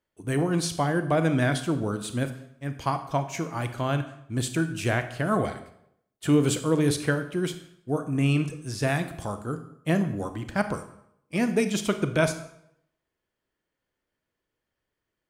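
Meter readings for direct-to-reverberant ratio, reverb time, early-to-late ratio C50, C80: 9.0 dB, 0.75 s, 11.5 dB, 14.5 dB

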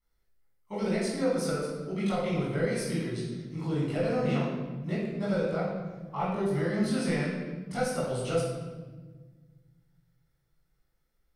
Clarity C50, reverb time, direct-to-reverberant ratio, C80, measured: -0.5 dB, 1.4 s, -10.5 dB, 2.5 dB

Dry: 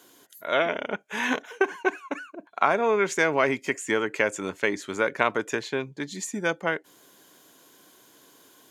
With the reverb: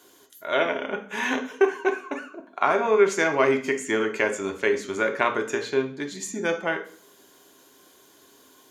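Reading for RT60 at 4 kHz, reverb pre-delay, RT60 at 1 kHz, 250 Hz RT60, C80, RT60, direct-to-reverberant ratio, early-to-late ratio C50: 0.45 s, 3 ms, 0.50 s, 0.55 s, 16.0 dB, 0.50 s, 3.5 dB, 10.5 dB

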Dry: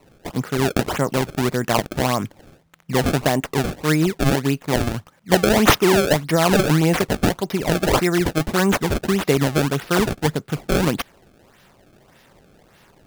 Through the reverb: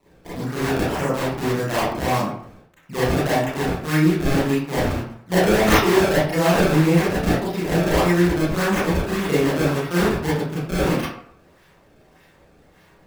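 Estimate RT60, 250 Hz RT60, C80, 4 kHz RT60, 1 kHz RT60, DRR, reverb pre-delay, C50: 0.60 s, 0.55 s, 5.5 dB, 0.35 s, 0.65 s, -10.0 dB, 28 ms, -1.0 dB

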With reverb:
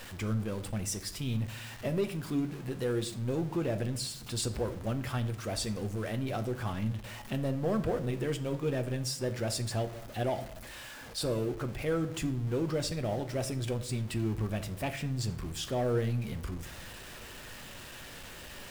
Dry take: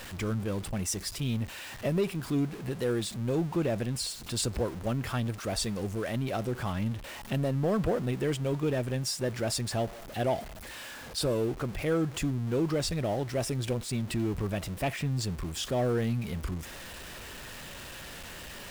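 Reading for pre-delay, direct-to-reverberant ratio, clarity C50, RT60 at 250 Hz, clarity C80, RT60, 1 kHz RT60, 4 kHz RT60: 8 ms, 8.0 dB, 14.5 dB, 1.0 s, 19.0 dB, 0.70 s, 0.55 s, 0.45 s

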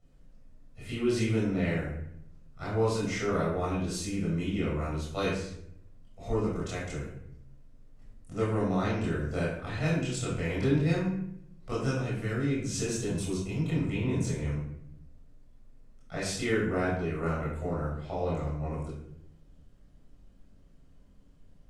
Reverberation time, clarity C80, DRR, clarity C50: 0.70 s, 5.0 dB, -8.0 dB, 1.0 dB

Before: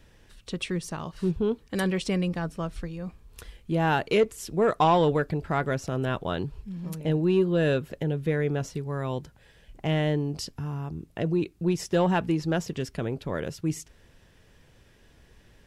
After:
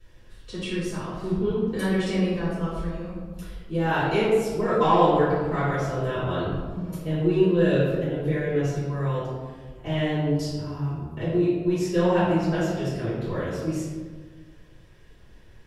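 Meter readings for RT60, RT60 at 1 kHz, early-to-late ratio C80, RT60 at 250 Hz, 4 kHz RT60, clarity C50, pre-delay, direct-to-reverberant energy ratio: 1.5 s, 1.4 s, 2.0 dB, 1.6 s, 0.80 s, -1.5 dB, 3 ms, -14.0 dB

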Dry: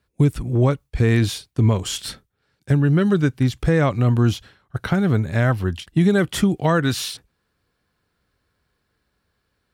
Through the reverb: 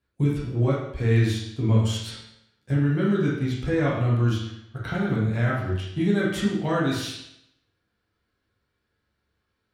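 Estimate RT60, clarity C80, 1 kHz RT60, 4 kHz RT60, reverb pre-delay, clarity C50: 0.75 s, 5.0 dB, 0.75 s, 0.70 s, 9 ms, 2.0 dB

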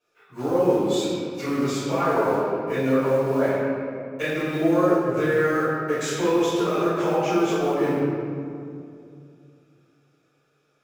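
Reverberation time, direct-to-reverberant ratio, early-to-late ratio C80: 2.5 s, -14.0 dB, -1.0 dB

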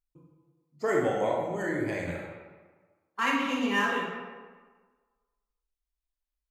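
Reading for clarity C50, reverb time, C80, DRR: 1.0 dB, 1.4 s, 3.0 dB, -2.5 dB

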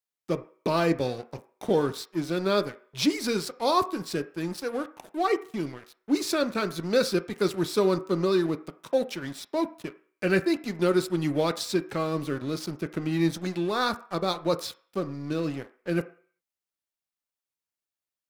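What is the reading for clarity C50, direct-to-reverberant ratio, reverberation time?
16.0 dB, 9.0 dB, 0.50 s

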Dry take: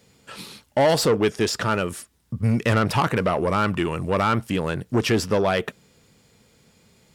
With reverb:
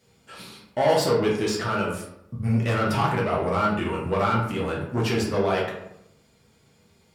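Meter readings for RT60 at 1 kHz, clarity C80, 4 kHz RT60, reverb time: 0.75 s, 7.0 dB, 0.45 s, 0.80 s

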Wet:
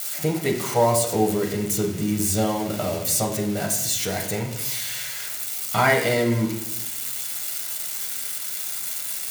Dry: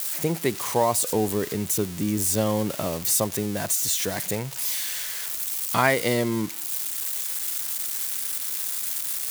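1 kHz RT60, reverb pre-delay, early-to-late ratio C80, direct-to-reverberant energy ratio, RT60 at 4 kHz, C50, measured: 0.70 s, 6 ms, 9.5 dB, 0.0 dB, 0.60 s, 7.0 dB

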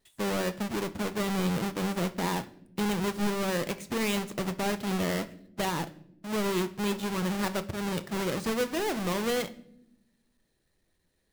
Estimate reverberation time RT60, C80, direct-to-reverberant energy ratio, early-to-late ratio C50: no single decay rate, 21.5 dB, 11.0 dB, 17.0 dB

